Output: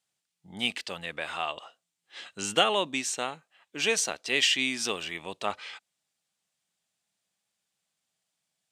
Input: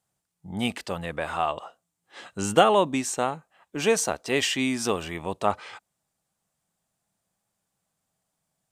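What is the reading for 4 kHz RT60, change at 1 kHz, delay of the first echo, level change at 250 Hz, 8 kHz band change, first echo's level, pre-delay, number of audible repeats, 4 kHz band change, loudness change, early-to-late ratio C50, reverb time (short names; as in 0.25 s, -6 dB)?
none, -7.5 dB, none, -9.0 dB, -1.0 dB, none, none, none, +3.5 dB, -3.0 dB, none, none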